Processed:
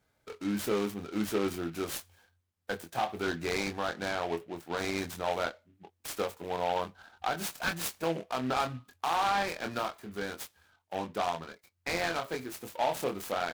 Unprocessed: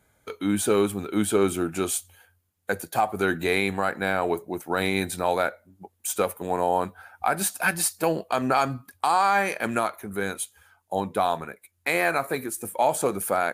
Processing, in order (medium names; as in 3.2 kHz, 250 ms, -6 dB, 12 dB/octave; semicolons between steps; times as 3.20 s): Bessel low-pass 12 kHz; doubling 24 ms -5.5 dB; delay time shaken by noise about 2 kHz, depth 0.049 ms; trim -9 dB